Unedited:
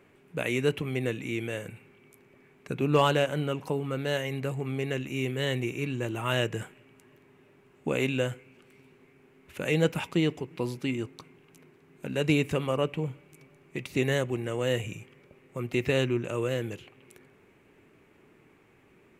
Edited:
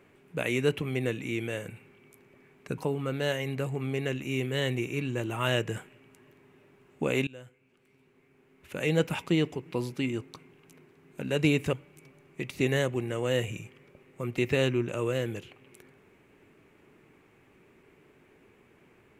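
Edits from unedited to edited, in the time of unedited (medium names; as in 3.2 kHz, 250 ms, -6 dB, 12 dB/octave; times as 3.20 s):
2.78–3.63 s: delete
8.12–10.05 s: fade in, from -23 dB
12.58–13.09 s: delete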